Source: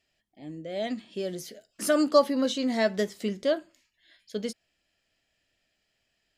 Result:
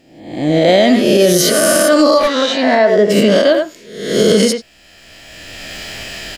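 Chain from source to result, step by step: reverse spectral sustain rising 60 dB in 0.90 s; recorder AGC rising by 19 dB/s; 2.17–3.09 s: band-pass filter 2.5 kHz -> 450 Hz, Q 0.63; speakerphone echo 90 ms, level -8 dB; loudness maximiser +16 dB; trim -1 dB

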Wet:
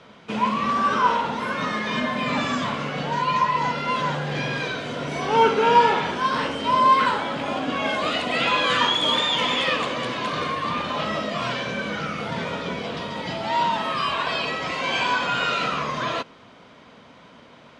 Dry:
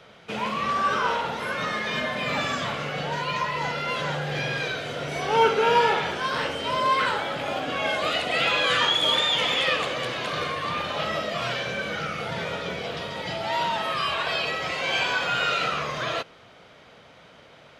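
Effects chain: low-pass 9.6 kHz 24 dB/octave; small resonant body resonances 240/1000 Hz, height 10 dB, ringing for 30 ms

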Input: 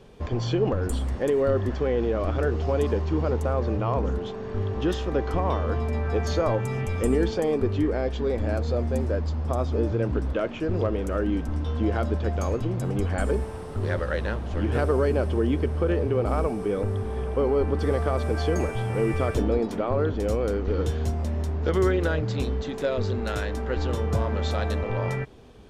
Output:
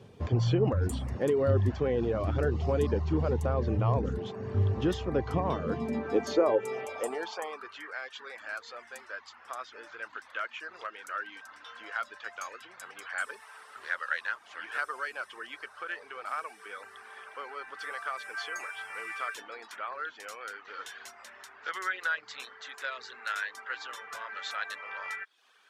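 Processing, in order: reverb removal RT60 0.52 s; high-pass sweep 100 Hz -> 1.5 kHz, 5.22–7.77 s; trim -3.5 dB

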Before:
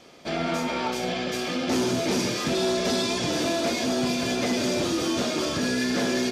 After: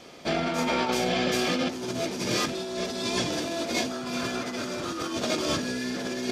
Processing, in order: 3.91–5.13 s: peaking EQ 1.3 kHz +10.5 dB 0.66 oct; compressor with a negative ratio -28 dBFS, ratio -0.5

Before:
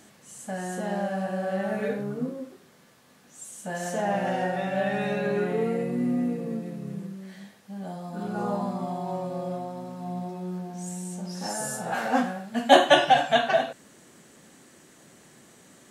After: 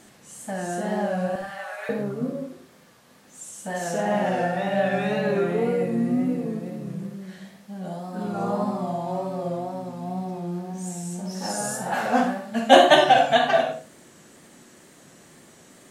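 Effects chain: 1.35–1.89 s: high-pass 830 Hz 24 dB/octave; wow and flutter 72 cents; reverberation RT60 0.30 s, pre-delay 48 ms, DRR 6.5 dB; trim +2 dB

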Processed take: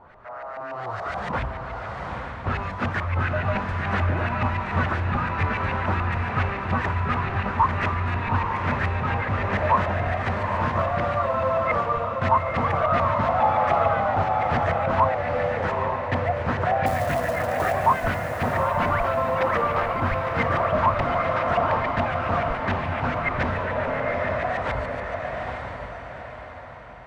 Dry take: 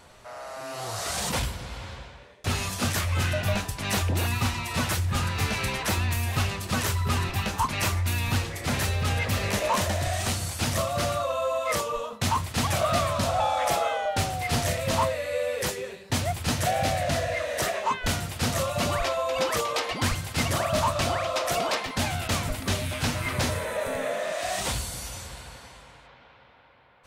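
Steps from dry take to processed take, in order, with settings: LFO low-pass saw up 7 Hz 840–2100 Hz; 16.86–17.73 s: short-mantissa float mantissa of 2-bit; echo that smears into a reverb 864 ms, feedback 42%, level -4 dB

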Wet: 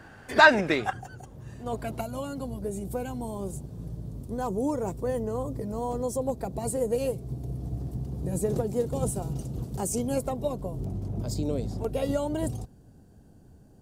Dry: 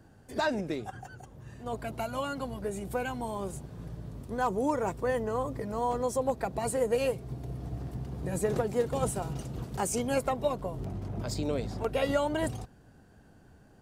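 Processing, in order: peaking EQ 1.8 kHz +13.5 dB 2.5 oct, from 0.93 s -4 dB, from 2.01 s -14.5 dB; trim +4.5 dB

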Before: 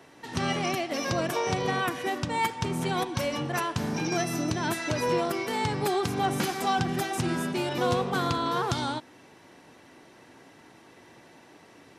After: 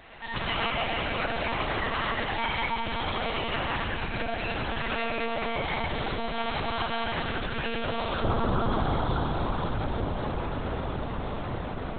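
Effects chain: echo that smears into a reverb 933 ms, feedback 72%, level -16 dB; algorithmic reverb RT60 2.7 s, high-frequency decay 0.95×, pre-delay 40 ms, DRR -6.5 dB; compression 4:1, threshold -30 dBFS, peak gain reduction 12.5 dB; monotone LPC vocoder at 8 kHz 230 Hz; tilt shelf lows -5 dB, from 8.22 s lows +3 dB; trim +4 dB

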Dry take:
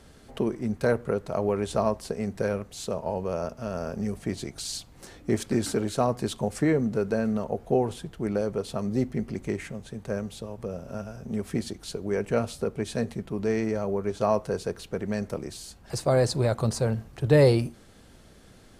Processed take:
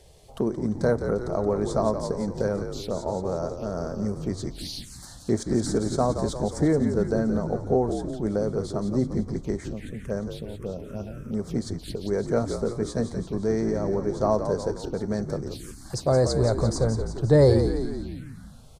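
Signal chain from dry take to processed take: frequency-shifting echo 174 ms, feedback 60%, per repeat -57 Hz, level -8 dB; touch-sensitive phaser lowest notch 200 Hz, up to 2.7 kHz, full sweep at -27.5 dBFS; trim +1.5 dB

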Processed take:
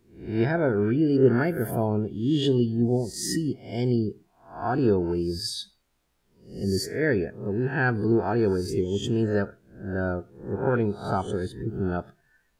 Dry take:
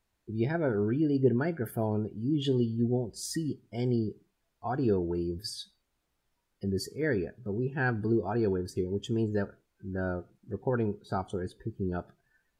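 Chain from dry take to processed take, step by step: reverse spectral sustain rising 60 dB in 0.49 s; trim +4.5 dB

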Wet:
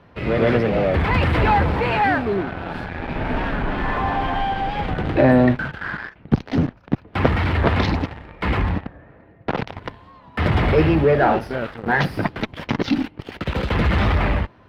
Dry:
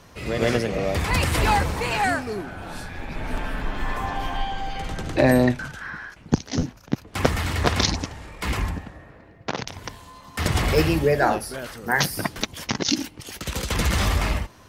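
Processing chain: high-pass 66 Hz 6 dB/octave; band-stop 1.1 kHz, Q 19; in parallel at -9 dB: fuzz box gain 38 dB, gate -34 dBFS; on the sum: distance through air 420 m; warped record 45 rpm, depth 100 cents; trim +1.5 dB

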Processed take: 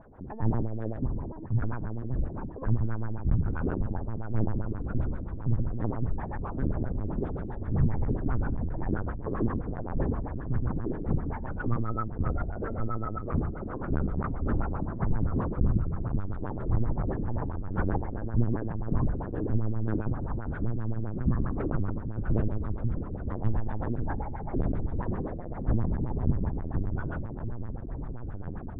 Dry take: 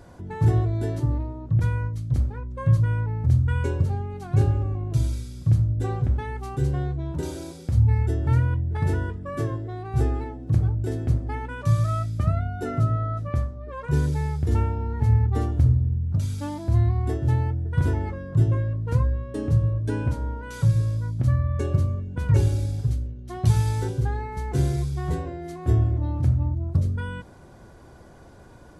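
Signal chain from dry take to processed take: echo that smears into a reverb 1349 ms, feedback 69%, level -8 dB; LPC vocoder at 8 kHz pitch kept; LFO low-pass sine 7.6 Hz 270–1700 Hz; trim -6.5 dB

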